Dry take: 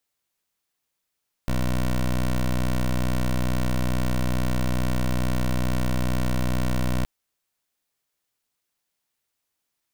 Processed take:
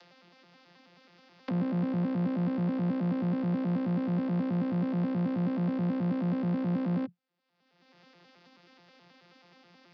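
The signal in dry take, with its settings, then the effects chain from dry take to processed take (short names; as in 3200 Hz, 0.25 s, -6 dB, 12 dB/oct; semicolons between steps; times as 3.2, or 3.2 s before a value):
pulse 62.3 Hz, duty 15% -22.5 dBFS 5.57 s
arpeggiated vocoder bare fifth, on F3, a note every 0.107 s; elliptic low-pass 5100 Hz, stop band 50 dB; upward compressor, threshold -32 dBFS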